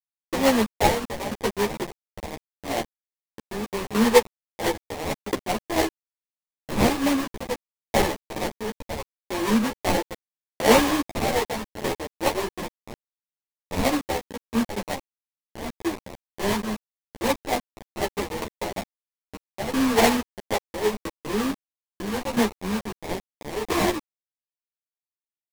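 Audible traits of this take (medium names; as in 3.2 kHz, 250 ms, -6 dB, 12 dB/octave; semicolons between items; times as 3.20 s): aliases and images of a low sample rate 1.4 kHz, jitter 20%; tremolo saw down 0.76 Hz, depth 85%; a quantiser's noise floor 6-bit, dither none; a shimmering, thickened sound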